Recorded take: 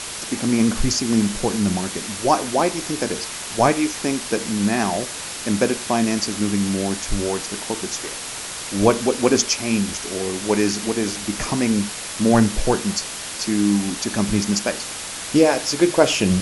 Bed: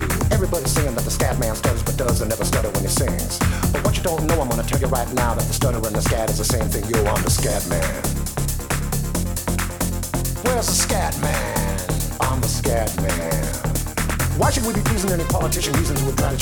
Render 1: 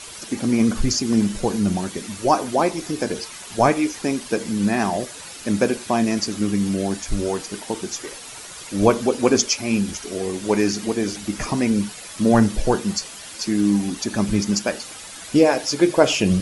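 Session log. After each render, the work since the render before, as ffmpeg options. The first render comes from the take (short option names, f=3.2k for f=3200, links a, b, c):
-af "afftdn=nr=10:nf=-31"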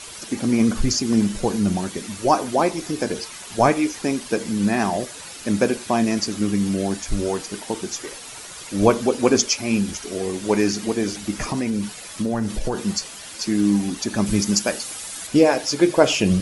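-filter_complex "[0:a]asettb=1/sr,asplit=3[a][b][c];[a]atrim=end=11.434[d];[b]atrim=start=11.43:end=12.87,asetpts=PTS-STARTPTS,afade=t=in:d=0.004:c=qsin,afade=t=out:st=1.436:d=0.004:c=qsin,acompressor=threshold=-19dB:ratio=6:attack=3.2:release=140:knee=1:detection=peak[e];[c]atrim=start=12.866[f];[d][e]acrossfade=d=0.004:c1=hsin:c2=qsin[g];[g][f]acrossfade=d=0.004:c1=qsin:c2=hsin,asettb=1/sr,asplit=3[h][i][j];[h]atrim=end=14.264[k];[i]atrim=start=14.26:end=15.27,asetpts=PTS-STARTPTS,afade=t=in:d=0.004:c=qsin,afade=t=out:st=1.006:d=0.004:c=qsin,highshelf=f=7.2k:g=10[l];[j]atrim=start=15.266[m];[k][l]acrossfade=d=0.004:c1=hsin:c2=qsin[n];[n][m]acrossfade=d=0.004:c1=qsin:c2=hsin"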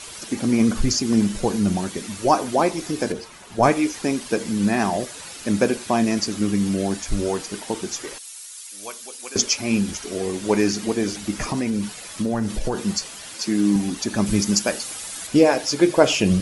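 -filter_complex "[0:a]asettb=1/sr,asplit=3[a][b][c];[a]atrim=end=3.124[d];[b]atrim=start=3.12:end=3.63,asetpts=PTS-STARTPTS,afade=t=in:d=0.004:c=qsin,afade=t=out:st=0.506:d=0.004:c=qsin,highshelf=f=2.1k:g=-10.5[e];[c]atrim=start=3.626[f];[d][e]acrossfade=d=0.004:c1=hsin:c2=qsin[g];[g][f]acrossfade=d=0.004:c1=qsin:c2=hsin,asettb=1/sr,asplit=3[h][i][j];[h]atrim=end=8.184[k];[i]atrim=start=8.18:end=9.36,asetpts=PTS-STARTPTS,afade=t=in:d=0.004:c=qsin,afade=t=out:st=1.176:d=0.004:c=qsin,aderivative[l];[j]atrim=start=9.356[m];[k][l]acrossfade=d=0.004:c1=hsin:c2=qsin[n];[n][m]acrossfade=d=0.004:c1=qsin:c2=hsin,asettb=1/sr,asplit=3[o][p][q];[o]atrim=end=13.344[r];[p]atrim=start=13.34:end=13.76,asetpts=PTS-STARTPTS,afade=t=in:d=0.004:c=qsin,afade=t=out:st=0.416:d=0.004:c=qsin,highpass=130[s];[q]atrim=start=13.756[t];[r][s]acrossfade=d=0.004:c1=hsin:c2=qsin[u];[u][t]acrossfade=d=0.004:c1=qsin:c2=hsin"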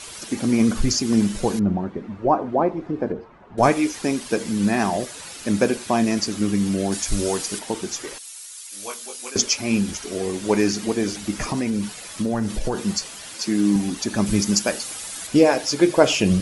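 -filter_complex "[0:a]asettb=1/sr,asplit=3[a][b][c];[a]atrim=end=1.594[d];[b]atrim=start=1.59:end=3.58,asetpts=PTS-STARTPTS,afade=t=in:d=0.004:c=qsin,afade=t=out:st=1.986:d=0.004:c=qsin,lowpass=1.1k[e];[c]atrim=start=3.576[f];[d][e]acrossfade=d=0.004:c1=hsin:c2=qsin[g];[g][f]acrossfade=d=0.004:c1=qsin:c2=hsin,asettb=1/sr,asplit=3[h][i][j];[h]atrim=end=6.924[k];[i]atrim=start=6.92:end=7.59,asetpts=PTS-STARTPTS,afade=t=in:d=0.004:c=qsin,afade=t=out:st=0.666:d=0.004:c=qsin,highshelf=f=3.9k:g=9[l];[j]atrim=start=7.586[m];[k][l]acrossfade=d=0.004:c1=hsin:c2=qsin[n];[n][m]acrossfade=d=0.004:c1=qsin:c2=hsin,asettb=1/sr,asplit=3[o][p][q];[o]atrim=end=8.704[r];[p]atrim=start=8.7:end=9.31,asetpts=PTS-STARTPTS,afade=t=in:d=0.004:c=qsin,afade=t=out:st=0.606:d=0.004:c=qsin,asplit=2[s][t];[t]adelay=21,volume=-2dB[u];[s][u]amix=inputs=2:normalize=0,atrim=end_sample=26901[v];[q]atrim=start=9.306[w];[r][v]acrossfade=d=0.004:c1=hsin:c2=qsin[x];[x][w]acrossfade=d=0.004:c1=qsin:c2=hsin"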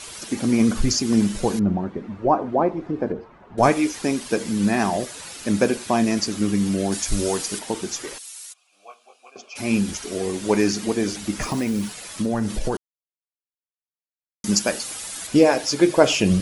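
-filter_complex "[0:a]asplit=3[a][b][c];[a]afade=t=out:st=8.52:d=0.02[d];[b]asplit=3[e][f][g];[e]bandpass=f=730:t=q:w=8,volume=0dB[h];[f]bandpass=f=1.09k:t=q:w=8,volume=-6dB[i];[g]bandpass=f=2.44k:t=q:w=8,volume=-9dB[j];[h][i][j]amix=inputs=3:normalize=0,afade=t=in:st=8.52:d=0.02,afade=t=out:st=9.55:d=0.02[k];[c]afade=t=in:st=9.55:d=0.02[l];[d][k][l]amix=inputs=3:normalize=0,asettb=1/sr,asplit=3[m][n][o];[m]atrim=end=11.424[p];[n]atrim=start=11.42:end=11.93,asetpts=PTS-STARTPTS,afade=t=in:d=0.004:c=qsin,afade=t=out:st=0.506:d=0.004:c=qsin,acrusher=bits=5:mode=log:mix=0:aa=0.000001[q];[o]atrim=start=11.926[r];[p][q]acrossfade=d=0.004:c1=hsin:c2=qsin[s];[s][r]acrossfade=d=0.004:c1=qsin:c2=hsin,asplit=3[t][u][v];[t]atrim=end=12.77,asetpts=PTS-STARTPTS,afade=t=out:st=12.766:d=0.004:c=hsin[w];[u]atrim=start=12.77:end=14.44,asetpts=PTS-STARTPTS,volume=0[x];[v]atrim=start=14.44,asetpts=PTS-STARTPTS,afade=t=in:d=0.004:c=hsin[y];[w][x][y]concat=n=3:v=0:a=1"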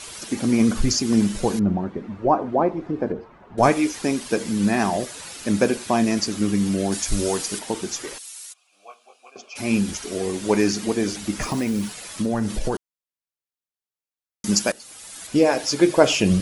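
-filter_complex "[0:a]asplit=2[a][b];[a]atrim=end=14.72,asetpts=PTS-STARTPTS,afade=t=out:st=14.716:d=0.004:c=hsin:silence=0.141254[c];[b]atrim=start=14.72,asetpts=PTS-STARTPTS,afade=t=in:d=0.97:silence=0.141254[d];[c][d]concat=n=2:v=0:a=1"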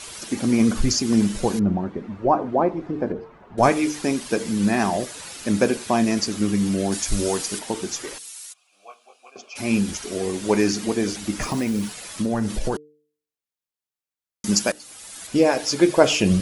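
-af "bandreject=f=149.9:t=h:w=4,bandreject=f=299.8:t=h:w=4,bandreject=f=449.7:t=h:w=4"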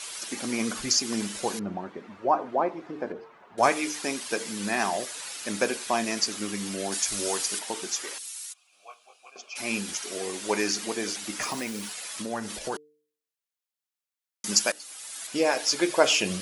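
-af "highpass=f=950:p=1"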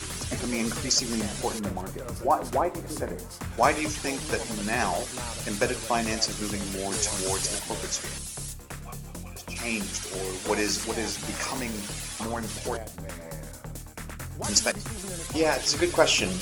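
-filter_complex "[1:a]volume=-17dB[a];[0:a][a]amix=inputs=2:normalize=0"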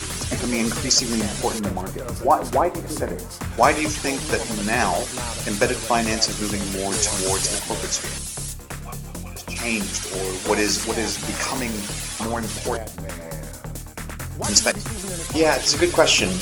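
-af "volume=6dB,alimiter=limit=-1dB:level=0:latency=1"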